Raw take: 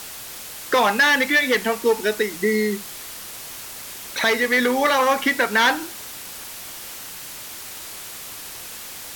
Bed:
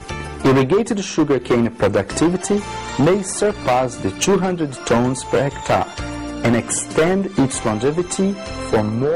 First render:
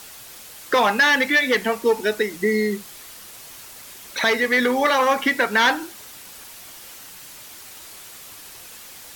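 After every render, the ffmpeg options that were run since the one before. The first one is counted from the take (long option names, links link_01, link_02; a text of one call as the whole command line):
ffmpeg -i in.wav -af "afftdn=noise_reduction=6:noise_floor=-36" out.wav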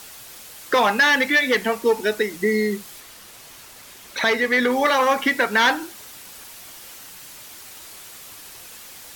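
ffmpeg -i in.wav -filter_complex "[0:a]asettb=1/sr,asplit=3[link_01][link_02][link_03];[link_01]atrim=end=3.004[link_04];[link_02]atrim=start=3:end=4.71,asetpts=PTS-STARTPTS,afade=type=in:duration=0.004:curve=qsin,afade=type=out:start_time=1.706:duration=0.004:curve=qsin,highshelf=frequency=6500:gain=-5[link_05];[link_03]atrim=start=4.706[link_06];[link_04][link_05]acrossfade=duration=0.004:curve1=hsin:curve2=qsin[link_07];[link_07][link_06]acrossfade=duration=0.004:curve1=qsin:curve2=hsin" out.wav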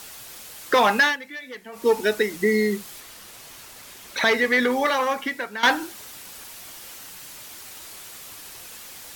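ffmpeg -i in.wav -filter_complex "[0:a]asplit=4[link_01][link_02][link_03][link_04];[link_01]atrim=end=1.17,asetpts=PTS-STARTPTS,afade=type=out:start_time=0.94:duration=0.23:curve=qsin:silence=0.11885[link_05];[link_02]atrim=start=1.17:end=1.72,asetpts=PTS-STARTPTS,volume=-18.5dB[link_06];[link_03]atrim=start=1.72:end=5.63,asetpts=PTS-STARTPTS,afade=type=in:duration=0.23:curve=qsin:silence=0.11885,afade=type=out:start_time=2.7:duration=1.21:silence=0.16788[link_07];[link_04]atrim=start=5.63,asetpts=PTS-STARTPTS,afade=type=in:duration=0.004:curve=hsin:silence=0.16788[link_08];[link_05][link_06][link_07][link_08]concat=n=4:v=0:a=1" out.wav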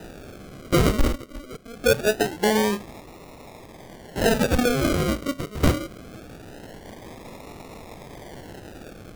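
ffmpeg -i in.wav -af "acrusher=samples=40:mix=1:aa=0.000001:lfo=1:lforange=24:lforate=0.23" out.wav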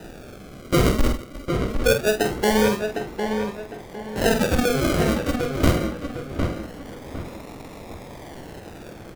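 ffmpeg -i in.wav -filter_complex "[0:a]asplit=2[link_01][link_02];[link_02]adelay=47,volume=-7.5dB[link_03];[link_01][link_03]amix=inputs=2:normalize=0,asplit=2[link_04][link_05];[link_05]adelay=756,lowpass=frequency=2600:poles=1,volume=-5.5dB,asplit=2[link_06][link_07];[link_07]adelay=756,lowpass=frequency=2600:poles=1,volume=0.36,asplit=2[link_08][link_09];[link_09]adelay=756,lowpass=frequency=2600:poles=1,volume=0.36,asplit=2[link_10][link_11];[link_11]adelay=756,lowpass=frequency=2600:poles=1,volume=0.36[link_12];[link_04][link_06][link_08][link_10][link_12]amix=inputs=5:normalize=0" out.wav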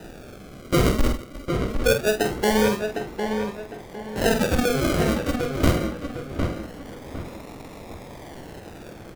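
ffmpeg -i in.wav -af "volume=-1dB" out.wav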